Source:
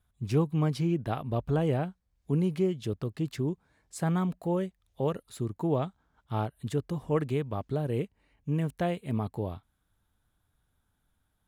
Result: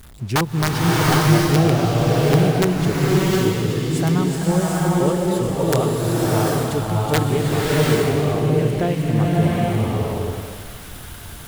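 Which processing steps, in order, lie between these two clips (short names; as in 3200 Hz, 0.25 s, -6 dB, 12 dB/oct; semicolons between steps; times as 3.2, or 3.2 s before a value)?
zero-crossing step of -42.5 dBFS; on a send: thin delay 0.373 s, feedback 74%, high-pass 2600 Hz, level -6 dB; on the sum: wrapped overs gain 17.5 dB; bloom reverb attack 0.77 s, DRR -5.5 dB; gain +5.5 dB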